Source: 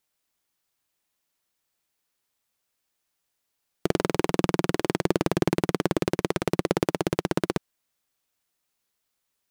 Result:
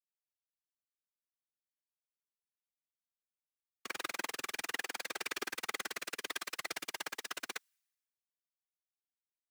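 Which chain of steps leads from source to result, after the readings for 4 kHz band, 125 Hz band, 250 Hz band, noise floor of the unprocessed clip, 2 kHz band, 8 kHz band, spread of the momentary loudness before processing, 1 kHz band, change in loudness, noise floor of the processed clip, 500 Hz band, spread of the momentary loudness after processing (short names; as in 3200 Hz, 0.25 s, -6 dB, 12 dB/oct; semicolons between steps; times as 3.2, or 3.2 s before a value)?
-5.0 dB, -38.5 dB, -28.0 dB, -79 dBFS, -4.5 dB, -3.5 dB, 3 LU, -13.0 dB, -13.0 dB, under -85 dBFS, -23.0 dB, 4 LU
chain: one diode to ground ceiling -16.5 dBFS; Chebyshev high-pass 1800 Hz, order 2; bell 3300 Hz -2.5 dB; comb 2.5 ms, depth 36%; whisperiser; three-band expander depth 100%; gain +3.5 dB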